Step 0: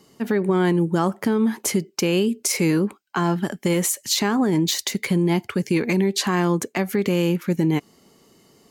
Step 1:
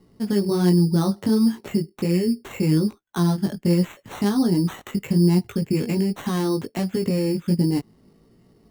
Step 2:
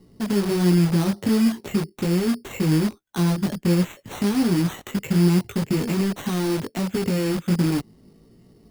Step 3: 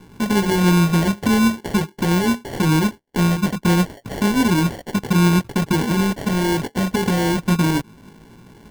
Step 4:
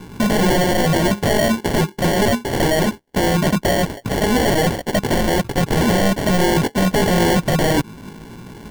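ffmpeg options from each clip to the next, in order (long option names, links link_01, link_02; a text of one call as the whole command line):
ffmpeg -i in.wav -af "aemphasis=mode=reproduction:type=riaa,flanger=delay=16.5:depth=3.5:speed=1.3,acrusher=samples=9:mix=1:aa=0.000001,volume=-3.5dB" out.wav
ffmpeg -i in.wav -filter_complex "[0:a]equalizer=frequency=1200:width_type=o:width=2.1:gain=-5,asplit=2[link_01][link_02];[link_02]aeval=exprs='(mod(18.8*val(0)+1,2)-1)/18.8':channel_layout=same,volume=-5dB[link_03];[link_01][link_03]amix=inputs=2:normalize=0" out.wav
ffmpeg -i in.wav -filter_complex "[0:a]asplit=2[link_01][link_02];[link_02]acompressor=threshold=-28dB:ratio=6,volume=3dB[link_03];[link_01][link_03]amix=inputs=2:normalize=0,acrusher=samples=35:mix=1:aa=0.000001" out.wav
ffmpeg -i in.wav -af "aeval=exprs='0.106*(abs(mod(val(0)/0.106+3,4)-2)-1)':channel_layout=same,volume=8.5dB" out.wav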